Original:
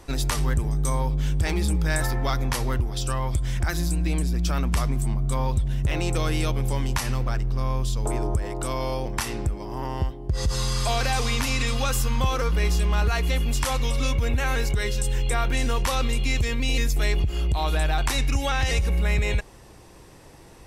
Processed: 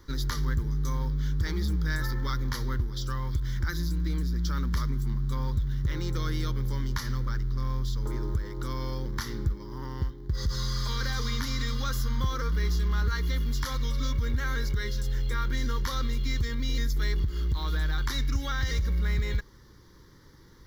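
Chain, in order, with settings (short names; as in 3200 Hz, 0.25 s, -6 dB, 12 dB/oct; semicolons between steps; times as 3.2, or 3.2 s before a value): 8.57–9.53 low shelf 360 Hz +2.5 dB; in parallel at -12 dB: companded quantiser 4-bit; on the sum: fixed phaser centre 2600 Hz, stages 6; gain -6 dB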